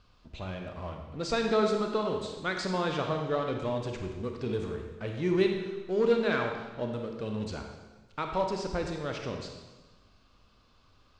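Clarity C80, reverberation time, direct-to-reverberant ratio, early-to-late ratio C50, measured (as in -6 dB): 6.0 dB, 1.3 s, 3.0 dB, 4.0 dB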